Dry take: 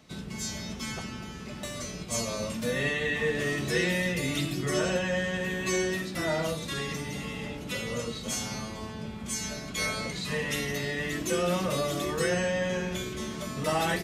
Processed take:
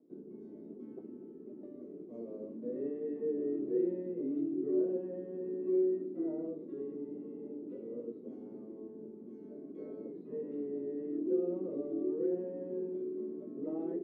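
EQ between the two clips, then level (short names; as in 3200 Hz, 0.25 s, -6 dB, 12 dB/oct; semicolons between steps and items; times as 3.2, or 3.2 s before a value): Butterworth band-pass 340 Hz, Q 2.3; +1.5 dB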